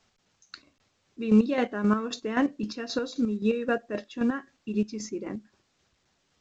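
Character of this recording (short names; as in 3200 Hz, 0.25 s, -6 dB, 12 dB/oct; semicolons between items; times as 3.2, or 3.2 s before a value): chopped level 3.8 Hz, depth 60%, duty 35%; A-law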